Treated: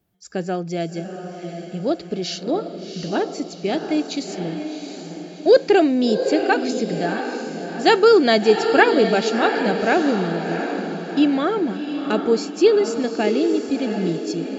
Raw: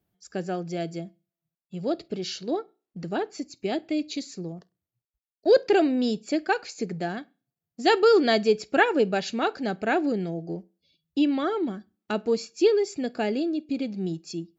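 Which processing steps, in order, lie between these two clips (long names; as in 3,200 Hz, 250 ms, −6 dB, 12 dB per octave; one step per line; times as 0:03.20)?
feedback delay with all-pass diffusion 721 ms, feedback 48%, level −7 dB
level +5.5 dB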